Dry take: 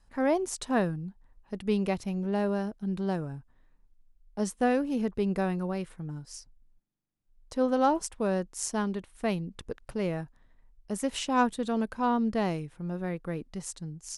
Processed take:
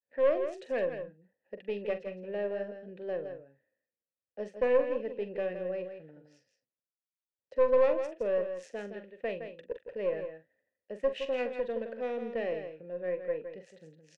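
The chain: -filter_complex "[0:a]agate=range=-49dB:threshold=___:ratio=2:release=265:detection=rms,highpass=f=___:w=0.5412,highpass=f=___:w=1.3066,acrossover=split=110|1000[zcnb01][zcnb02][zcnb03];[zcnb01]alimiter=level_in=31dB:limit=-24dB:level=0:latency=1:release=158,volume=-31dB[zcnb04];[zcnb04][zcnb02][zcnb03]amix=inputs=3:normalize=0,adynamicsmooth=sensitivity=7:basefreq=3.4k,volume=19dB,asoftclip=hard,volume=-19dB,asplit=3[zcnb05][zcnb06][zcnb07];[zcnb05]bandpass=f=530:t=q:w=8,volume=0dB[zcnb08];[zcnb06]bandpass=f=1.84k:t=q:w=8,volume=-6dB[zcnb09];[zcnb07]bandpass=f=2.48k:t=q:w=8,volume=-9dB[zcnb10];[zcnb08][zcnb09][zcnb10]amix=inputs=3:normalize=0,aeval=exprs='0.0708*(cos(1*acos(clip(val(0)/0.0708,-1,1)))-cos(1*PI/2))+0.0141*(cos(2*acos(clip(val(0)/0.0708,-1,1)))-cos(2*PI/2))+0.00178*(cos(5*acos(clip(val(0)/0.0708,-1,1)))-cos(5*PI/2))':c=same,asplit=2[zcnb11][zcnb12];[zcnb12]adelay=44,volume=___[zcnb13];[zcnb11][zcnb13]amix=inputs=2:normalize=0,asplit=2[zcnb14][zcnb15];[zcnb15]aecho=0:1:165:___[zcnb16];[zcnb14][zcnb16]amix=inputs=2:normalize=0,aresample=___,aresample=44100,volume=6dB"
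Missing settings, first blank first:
-51dB, 81, 81, -11dB, 0.376, 32000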